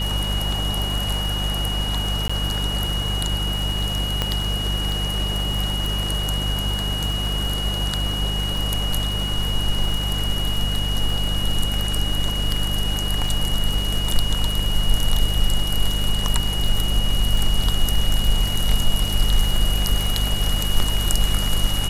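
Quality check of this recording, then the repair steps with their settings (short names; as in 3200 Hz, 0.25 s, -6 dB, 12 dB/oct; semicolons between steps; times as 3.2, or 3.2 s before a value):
crackle 32/s -25 dBFS
hum 50 Hz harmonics 4 -25 dBFS
tone 2900 Hz -26 dBFS
2.28–2.29 gap 15 ms
4.22 pop -7 dBFS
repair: de-click; notch 2900 Hz, Q 30; de-hum 50 Hz, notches 4; interpolate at 2.28, 15 ms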